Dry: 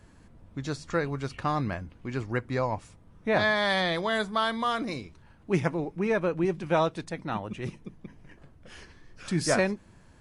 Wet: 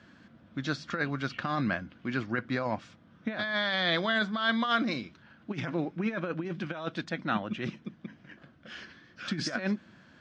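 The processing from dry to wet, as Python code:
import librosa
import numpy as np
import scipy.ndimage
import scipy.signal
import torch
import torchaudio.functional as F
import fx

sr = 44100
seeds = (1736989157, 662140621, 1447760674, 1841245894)

y = fx.over_compress(x, sr, threshold_db=-28.0, ratio=-0.5)
y = fx.cabinet(y, sr, low_hz=170.0, low_slope=12, high_hz=5400.0, hz=(220.0, 430.0, 900.0, 1500.0, 3300.0), db=(4, -8, -7, 7, 5))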